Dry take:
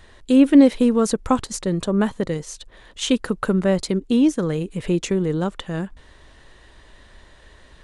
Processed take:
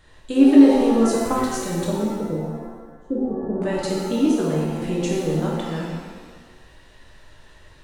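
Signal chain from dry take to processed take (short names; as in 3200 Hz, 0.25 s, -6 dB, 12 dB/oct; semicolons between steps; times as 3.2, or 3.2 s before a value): 1.91–3.62 elliptic low-pass 560 Hz, stop band 40 dB; shimmer reverb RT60 1.3 s, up +7 st, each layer -8 dB, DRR -4 dB; gain -7 dB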